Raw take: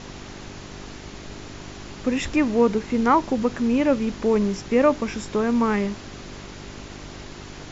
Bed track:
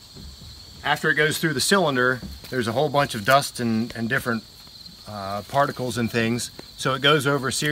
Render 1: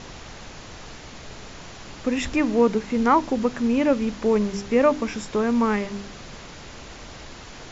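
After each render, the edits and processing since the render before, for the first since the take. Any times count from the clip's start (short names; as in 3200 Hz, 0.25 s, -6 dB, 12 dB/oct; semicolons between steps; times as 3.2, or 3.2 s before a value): de-hum 50 Hz, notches 8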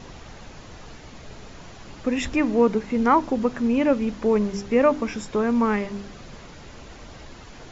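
denoiser 6 dB, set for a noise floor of -41 dBFS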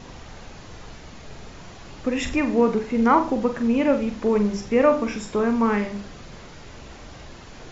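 flutter echo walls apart 7.5 m, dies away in 0.33 s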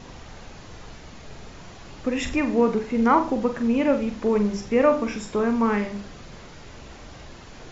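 gain -1 dB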